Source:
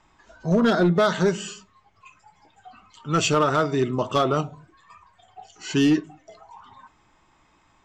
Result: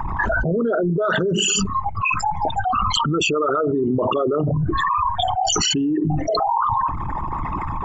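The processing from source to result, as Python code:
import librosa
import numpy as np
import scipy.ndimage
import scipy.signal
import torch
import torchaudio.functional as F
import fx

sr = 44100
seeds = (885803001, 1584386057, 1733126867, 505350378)

y = fx.envelope_sharpen(x, sr, power=3.0)
y = fx.env_flatten(y, sr, amount_pct=100)
y = F.gain(torch.from_numpy(y), -3.5).numpy()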